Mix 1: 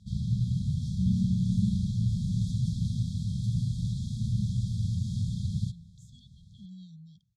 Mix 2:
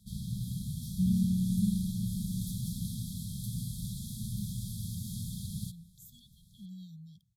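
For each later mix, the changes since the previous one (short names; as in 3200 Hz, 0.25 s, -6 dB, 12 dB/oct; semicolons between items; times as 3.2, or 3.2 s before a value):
first sound: add bell 94 Hz -11 dB 1.9 oct; master: remove LPF 7000 Hz 24 dB/oct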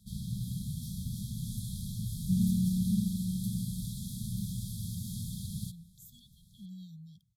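second sound: entry +1.30 s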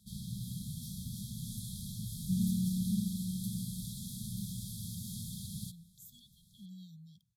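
master: add low shelf 160 Hz -8.5 dB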